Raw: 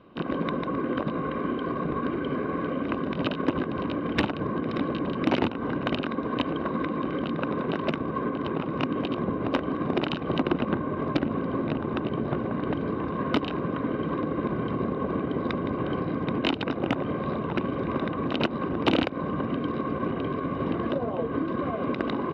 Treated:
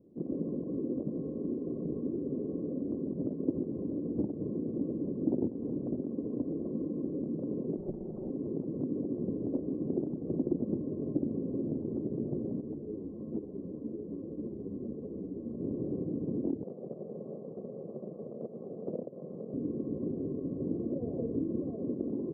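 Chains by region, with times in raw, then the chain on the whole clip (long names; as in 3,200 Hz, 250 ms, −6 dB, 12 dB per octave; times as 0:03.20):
0:07.77–0:08.30: lower of the sound and its delayed copy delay 5.4 ms + highs frequency-modulated by the lows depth 0.95 ms
0:12.61–0:15.60: amplitude modulation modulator 110 Hz, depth 35% + string-ensemble chorus
0:16.63–0:19.54: lower of the sound and its delayed copy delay 1.7 ms + high-pass filter 170 Hz 24 dB per octave
0:21.00–0:21.59: low-shelf EQ 91 Hz +9.5 dB + flutter between parallel walls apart 9.7 metres, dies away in 0.47 s
whole clip: inverse Chebyshev low-pass filter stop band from 2,000 Hz, stop band 70 dB; low-shelf EQ 110 Hz −10 dB; level −3 dB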